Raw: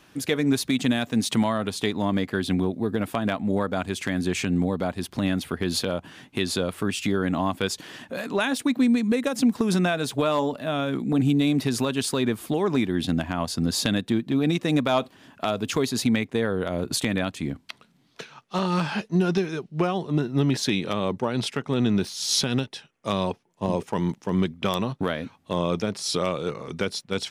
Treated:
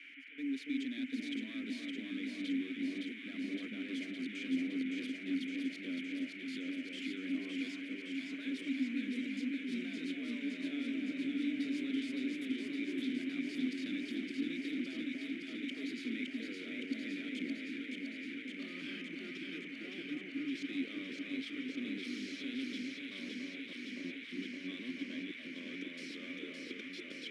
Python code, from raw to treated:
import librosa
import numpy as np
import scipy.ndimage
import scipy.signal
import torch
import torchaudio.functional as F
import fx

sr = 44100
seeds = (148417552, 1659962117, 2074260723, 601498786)

p1 = fx.cvsd(x, sr, bps=64000)
p2 = scipy.signal.sosfilt(scipy.signal.butter(2, 160.0, 'highpass', fs=sr, output='sos'), p1)
p3 = fx.bass_treble(p2, sr, bass_db=-13, treble_db=5)
p4 = fx.auto_swell(p3, sr, attack_ms=225.0)
p5 = fx.level_steps(p4, sr, step_db=19)
p6 = fx.dmg_noise_band(p5, sr, seeds[0], low_hz=1400.0, high_hz=2800.0, level_db=-48.0)
p7 = fx.vowel_filter(p6, sr, vowel='i')
p8 = p7 + fx.echo_alternate(p7, sr, ms=282, hz=1200.0, feedback_pct=89, wet_db=-2.0, dry=0)
y = p8 * 10.0 ** (5.0 / 20.0)